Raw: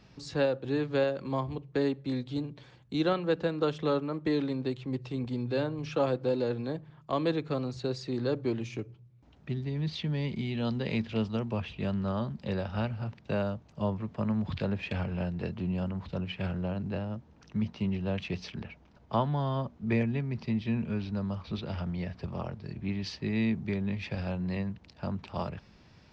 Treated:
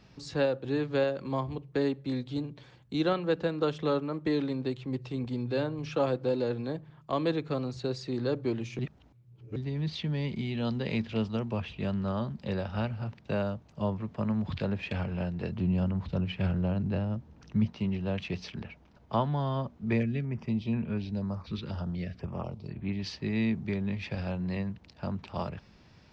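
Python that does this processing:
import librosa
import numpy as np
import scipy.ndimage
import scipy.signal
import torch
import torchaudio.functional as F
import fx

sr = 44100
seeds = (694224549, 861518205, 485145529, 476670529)

y = fx.low_shelf(x, sr, hz=230.0, db=6.5, at=(15.52, 17.66))
y = fx.filter_held_notch(y, sr, hz=4.1, low_hz=680.0, high_hz=5600.0, at=(19.97, 22.98), fade=0.02)
y = fx.edit(y, sr, fx.reverse_span(start_s=8.79, length_s=0.77), tone=tone)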